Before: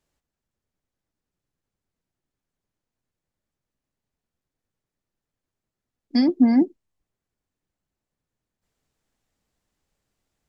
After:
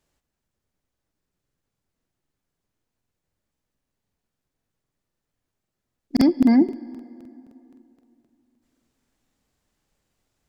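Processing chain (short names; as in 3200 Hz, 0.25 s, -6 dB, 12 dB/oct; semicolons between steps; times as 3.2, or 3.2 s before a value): limiter -12.5 dBFS, peak gain reduction 5 dB; plate-style reverb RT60 3 s, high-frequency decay 0.6×, DRR 17.5 dB; crackling interface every 0.26 s, samples 2048, repeat, from 0.92; gain +3.5 dB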